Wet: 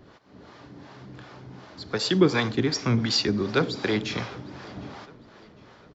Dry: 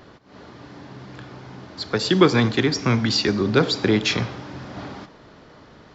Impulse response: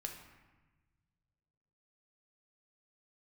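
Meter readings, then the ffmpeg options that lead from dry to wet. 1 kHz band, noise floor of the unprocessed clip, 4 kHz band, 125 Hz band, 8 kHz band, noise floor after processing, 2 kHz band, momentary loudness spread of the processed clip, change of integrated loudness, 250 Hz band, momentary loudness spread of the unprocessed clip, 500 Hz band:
−6.0 dB, −49 dBFS, −4.0 dB, −5.0 dB, can't be measured, −53 dBFS, −5.0 dB, 23 LU, −4.5 dB, −4.5 dB, 23 LU, −5.0 dB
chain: -filter_complex "[0:a]acrossover=split=450[link_01][link_02];[link_01]aeval=exprs='val(0)*(1-0.7/2+0.7/2*cos(2*PI*2.7*n/s))':channel_layout=same[link_03];[link_02]aeval=exprs='val(0)*(1-0.7/2-0.7/2*cos(2*PI*2.7*n/s))':channel_layout=same[link_04];[link_03][link_04]amix=inputs=2:normalize=0,asplit=2[link_05][link_06];[link_06]adelay=755,lowpass=frequency=5000:poles=1,volume=-22.5dB,asplit=2[link_07][link_08];[link_08]adelay=755,lowpass=frequency=5000:poles=1,volume=0.5,asplit=2[link_09][link_10];[link_10]adelay=755,lowpass=frequency=5000:poles=1,volume=0.5[link_11];[link_07][link_09][link_11]amix=inputs=3:normalize=0[link_12];[link_05][link_12]amix=inputs=2:normalize=0,volume=-1.5dB"

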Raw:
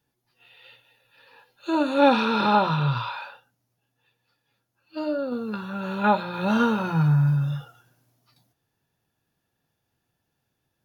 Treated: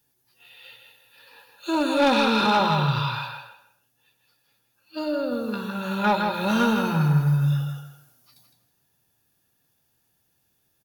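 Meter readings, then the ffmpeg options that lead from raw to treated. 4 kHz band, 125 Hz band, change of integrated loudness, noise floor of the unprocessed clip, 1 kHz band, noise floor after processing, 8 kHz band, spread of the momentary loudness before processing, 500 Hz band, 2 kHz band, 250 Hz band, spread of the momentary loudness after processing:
+5.0 dB, +0.5 dB, +0.5 dB, −78 dBFS, 0.0 dB, −70 dBFS, can't be measured, 14 LU, 0.0 dB, +2.0 dB, +0.5 dB, 13 LU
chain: -filter_complex "[0:a]asoftclip=type=tanh:threshold=-13dB,crystalizer=i=2.5:c=0,asplit=2[link_01][link_02];[link_02]adelay=161,lowpass=frequency=4700:poles=1,volume=-5dB,asplit=2[link_03][link_04];[link_04]adelay=161,lowpass=frequency=4700:poles=1,volume=0.26,asplit=2[link_05][link_06];[link_06]adelay=161,lowpass=frequency=4700:poles=1,volume=0.26[link_07];[link_03][link_05][link_07]amix=inputs=3:normalize=0[link_08];[link_01][link_08]amix=inputs=2:normalize=0"

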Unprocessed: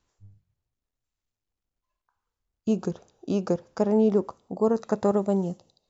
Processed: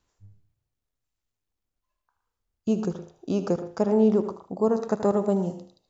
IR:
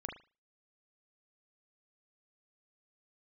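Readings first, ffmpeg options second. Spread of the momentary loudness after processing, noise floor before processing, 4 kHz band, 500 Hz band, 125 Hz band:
12 LU, below −85 dBFS, +0.5 dB, +0.5 dB, +0.5 dB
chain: -filter_complex "[0:a]asplit=2[link_01][link_02];[1:a]atrim=start_sample=2205,adelay=78[link_03];[link_02][link_03]afir=irnorm=-1:irlink=0,volume=-8.5dB[link_04];[link_01][link_04]amix=inputs=2:normalize=0"

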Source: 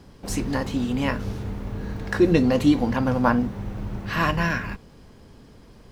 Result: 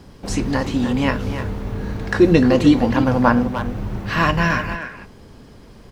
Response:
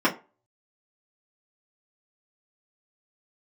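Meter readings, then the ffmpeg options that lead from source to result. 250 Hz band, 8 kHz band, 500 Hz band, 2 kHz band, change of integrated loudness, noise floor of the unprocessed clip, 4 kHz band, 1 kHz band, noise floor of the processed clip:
+5.0 dB, can't be measured, +5.5 dB, +5.5 dB, +5.0 dB, −49 dBFS, +5.0 dB, +5.5 dB, −44 dBFS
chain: -filter_complex "[0:a]acrossover=split=8500[link_01][link_02];[link_02]acompressor=threshold=-59dB:ratio=4:attack=1:release=60[link_03];[link_01][link_03]amix=inputs=2:normalize=0,asplit=2[link_04][link_05];[link_05]adelay=300,highpass=300,lowpass=3400,asoftclip=type=hard:threshold=-14.5dB,volume=-8dB[link_06];[link_04][link_06]amix=inputs=2:normalize=0,volume=5dB"

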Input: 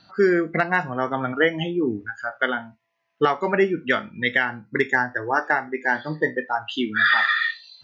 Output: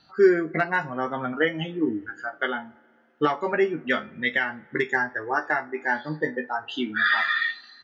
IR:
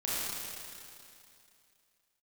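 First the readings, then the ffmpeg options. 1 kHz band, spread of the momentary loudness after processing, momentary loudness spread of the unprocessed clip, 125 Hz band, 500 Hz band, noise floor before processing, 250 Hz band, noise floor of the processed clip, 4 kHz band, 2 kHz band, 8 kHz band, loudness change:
−3.5 dB, 8 LU, 7 LU, −4.5 dB, −1.5 dB, −73 dBFS, −2.0 dB, −60 dBFS, −3.5 dB, −3.5 dB, can't be measured, −3.0 dB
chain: -filter_complex "[0:a]asplit=2[link_01][link_02];[link_02]adelay=13,volume=-6dB[link_03];[link_01][link_03]amix=inputs=2:normalize=0,flanger=delay=2.3:depth=1.8:regen=70:speed=0.39:shape=triangular,asplit=2[link_04][link_05];[1:a]atrim=start_sample=2205,lowpass=2100[link_06];[link_05][link_06]afir=irnorm=-1:irlink=0,volume=-30dB[link_07];[link_04][link_07]amix=inputs=2:normalize=0"

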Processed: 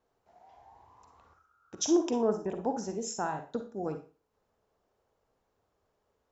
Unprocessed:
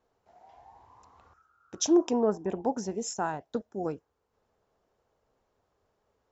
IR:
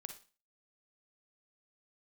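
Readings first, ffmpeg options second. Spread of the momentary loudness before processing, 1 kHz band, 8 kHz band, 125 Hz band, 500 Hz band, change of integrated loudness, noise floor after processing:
12 LU, −1.5 dB, can't be measured, −1.5 dB, −2.0 dB, −2.5 dB, −78 dBFS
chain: -filter_complex "[1:a]atrim=start_sample=2205[link_01];[0:a][link_01]afir=irnorm=-1:irlink=0,volume=2.5dB"

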